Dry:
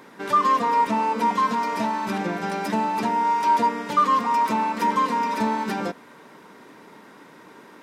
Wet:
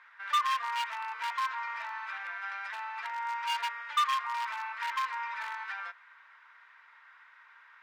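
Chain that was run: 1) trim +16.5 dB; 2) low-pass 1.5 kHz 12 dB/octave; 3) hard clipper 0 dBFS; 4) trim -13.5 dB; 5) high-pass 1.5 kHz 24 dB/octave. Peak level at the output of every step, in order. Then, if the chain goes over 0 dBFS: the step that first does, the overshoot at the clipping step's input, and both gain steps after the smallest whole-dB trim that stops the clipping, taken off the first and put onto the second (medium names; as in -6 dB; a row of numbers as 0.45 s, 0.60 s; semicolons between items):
+7.5 dBFS, +6.0 dBFS, 0.0 dBFS, -13.5 dBFS, -16.0 dBFS; step 1, 6.0 dB; step 1 +10.5 dB, step 4 -7.5 dB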